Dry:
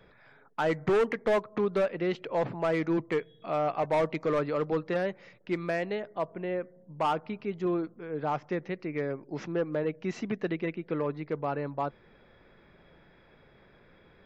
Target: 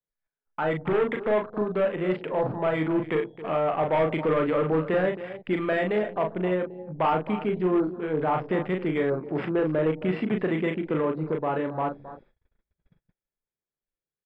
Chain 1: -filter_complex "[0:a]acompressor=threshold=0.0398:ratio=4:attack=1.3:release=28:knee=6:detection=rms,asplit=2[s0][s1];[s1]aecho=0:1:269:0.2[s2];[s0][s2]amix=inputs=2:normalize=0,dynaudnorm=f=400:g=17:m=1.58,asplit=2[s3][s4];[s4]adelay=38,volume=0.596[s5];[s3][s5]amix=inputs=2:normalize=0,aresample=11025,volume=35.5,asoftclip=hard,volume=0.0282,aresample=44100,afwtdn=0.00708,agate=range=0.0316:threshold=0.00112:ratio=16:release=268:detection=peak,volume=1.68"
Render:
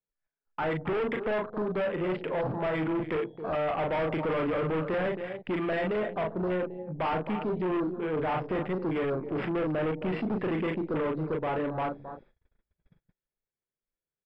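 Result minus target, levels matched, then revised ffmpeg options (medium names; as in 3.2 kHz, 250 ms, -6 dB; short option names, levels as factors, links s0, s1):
overload inside the chain: distortion +15 dB
-filter_complex "[0:a]acompressor=threshold=0.0398:ratio=4:attack=1.3:release=28:knee=6:detection=rms,asplit=2[s0][s1];[s1]aecho=0:1:269:0.2[s2];[s0][s2]amix=inputs=2:normalize=0,dynaudnorm=f=400:g=17:m=1.58,asplit=2[s3][s4];[s4]adelay=38,volume=0.596[s5];[s3][s5]amix=inputs=2:normalize=0,aresample=11025,volume=12.6,asoftclip=hard,volume=0.0794,aresample=44100,afwtdn=0.00708,agate=range=0.0316:threshold=0.00112:ratio=16:release=268:detection=peak,volume=1.68"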